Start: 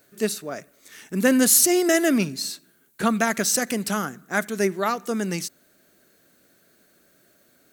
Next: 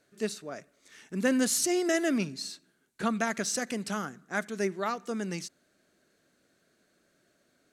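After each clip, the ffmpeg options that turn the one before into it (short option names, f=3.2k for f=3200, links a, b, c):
-af "lowpass=7.7k,volume=-7.5dB"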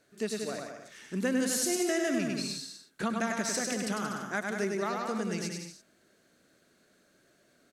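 -af "aecho=1:1:100|180|244|295.2|336.2:0.631|0.398|0.251|0.158|0.1,acompressor=threshold=-32dB:ratio=2,volume=1.5dB"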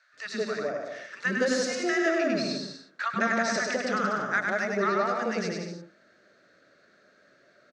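-filter_complex "[0:a]highpass=110,equalizer=f=150:t=q:w=4:g=-3,equalizer=f=580:t=q:w=4:g=7,equalizer=f=1.3k:t=q:w=4:g=8,equalizer=f=1.8k:t=q:w=4:g=6,equalizer=f=3.1k:t=q:w=4:g=-5,lowpass=f=5.4k:w=0.5412,lowpass=f=5.4k:w=1.3066,acrossover=split=250|950[a][b][c];[a]adelay=130[d];[b]adelay=170[e];[d][e][c]amix=inputs=3:normalize=0,volume=4dB"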